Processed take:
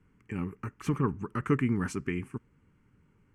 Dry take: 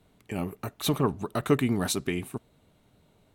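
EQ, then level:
high-frequency loss of the air 100 metres
phaser with its sweep stopped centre 1,600 Hz, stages 4
0.0 dB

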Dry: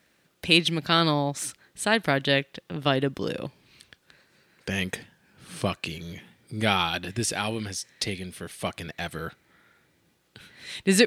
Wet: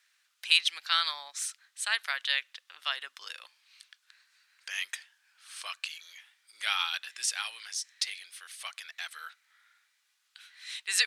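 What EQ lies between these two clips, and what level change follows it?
four-pole ladder high-pass 980 Hz, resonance 30%
parametric band 5,900 Hz +11 dB 2.9 octaves
−5.0 dB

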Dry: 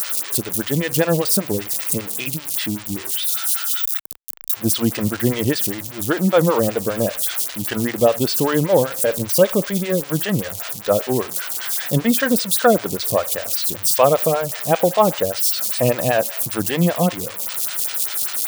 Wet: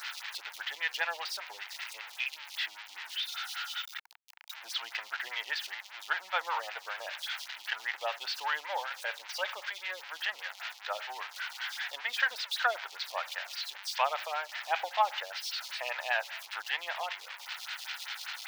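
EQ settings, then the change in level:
Chebyshev high-pass filter 890 Hz, order 4
high-frequency loss of the air 260 metres
parametric band 1,100 Hz −9.5 dB 0.52 octaves
0.0 dB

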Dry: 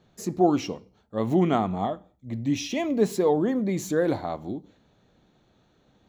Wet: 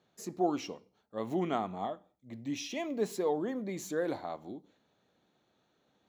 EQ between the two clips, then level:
high-pass filter 340 Hz 6 dB per octave
−7.0 dB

